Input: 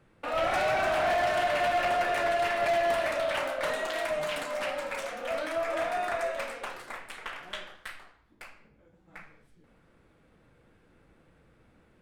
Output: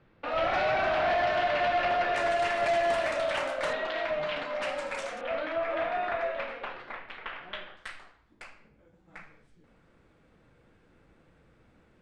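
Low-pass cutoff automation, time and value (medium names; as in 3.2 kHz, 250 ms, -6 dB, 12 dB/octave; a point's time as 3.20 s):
low-pass 24 dB/octave
4.8 kHz
from 2.16 s 9 kHz
from 3.73 s 4.2 kHz
from 4.62 s 8.9 kHz
from 5.21 s 3.6 kHz
from 7.77 s 8.6 kHz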